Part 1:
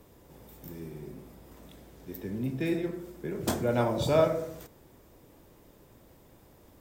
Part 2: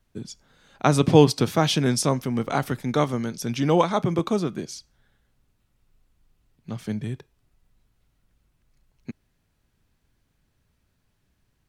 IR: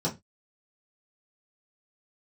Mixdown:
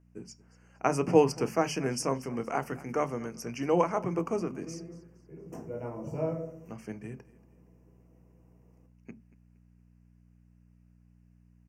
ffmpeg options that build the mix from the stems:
-filter_complex "[0:a]adelay=2050,volume=-16dB,afade=type=in:start_time=5.25:duration=0.75:silence=0.446684,asplit=2[link_01][link_02];[link_02]volume=-7.5dB[link_03];[1:a]highpass=frequency=300:poles=1,aeval=exprs='val(0)+0.002*(sin(2*PI*60*n/s)+sin(2*PI*2*60*n/s)/2+sin(2*PI*3*60*n/s)/3+sin(2*PI*4*60*n/s)/4+sin(2*PI*5*60*n/s)/5)':channel_layout=same,volume=-6dB,asplit=3[link_04][link_05][link_06];[link_05]volume=-19.5dB[link_07];[link_06]volume=-20dB[link_08];[2:a]atrim=start_sample=2205[link_09];[link_03][link_07]amix=inputs=2:normalize=0[link_10];[link_10][link_09]afir=irnorm=-1:irlink=0[link_11];[link_08]aecho=0:1:233|466|699|932|1165:1|0.36|0.13|0.0467|0.0168[link_12];[link_01][link_04][link_11][link_12]amix=inputs=4:normalize=0,asuperstop=centerf=3700:order=8:qfactor=2.1,highshelf=frequency=8900:gain=-7"

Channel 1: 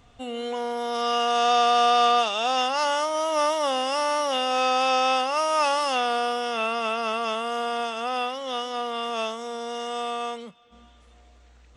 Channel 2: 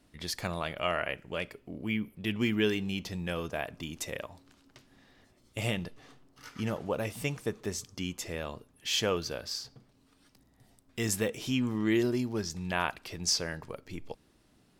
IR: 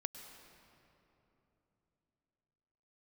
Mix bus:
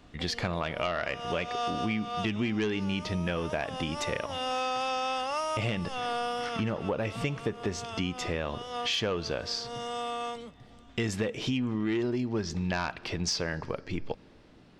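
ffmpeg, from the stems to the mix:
-filter_complex "[0:a]volume=-4.5dB[link_01];[1:a]lowpass=4100,aeval=exprs='0.224*sin(PI/2*1.78*val(0)/0.224)':channel_layout=same,volume=-1dB,asplit=3[link_02][link_03][link_04];[link_03]volume=-17.5dB[link_05];[link_04]apad=whole_len=518801[link_06];[link_01][link_06]sidechaincompress=threshold=-41dB:ratio=3:attack=30:release=245[link_07];[2:a]atrim=start_sample=2205[link_08];[link_05][link_08]afir=irnorm=-1:irlink=0[link_09];[link_07][link_02][link_09]amix=inputs=3:normalize=0,acompressor=threshold=-27dB:ratio=6"

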